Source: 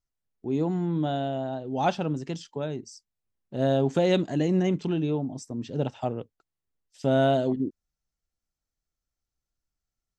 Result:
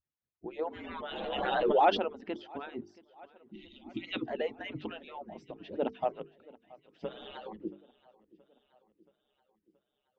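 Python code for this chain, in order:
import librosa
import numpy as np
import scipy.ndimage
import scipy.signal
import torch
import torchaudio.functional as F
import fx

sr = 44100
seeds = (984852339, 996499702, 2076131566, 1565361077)

p1 = fx.hpss_only(x, sr, part='percussive')
p2 = scipy.signal.sosfilt(scipy.signal.butter(4, 3000.0, 'lowpass', fs=sr, output='sos'), p1)
p3 = fx.hum_notches(p2, sr, base_hz=50, count=9)
p4 = fx.spec_repair(p3, sr, seeds[0], start_s=3.26, length_s=0.84, low_hz=380.0, high_hz=1900.0, source='before')
p5 = p4 + fx.echo_feedback(p4, sr, ms=676, feedback_pct=60, wet_db=-22.5, dry=0)
y = fx.pre_swell(p5, sr, db_per_s=26.0, at=(0.59, 2.27))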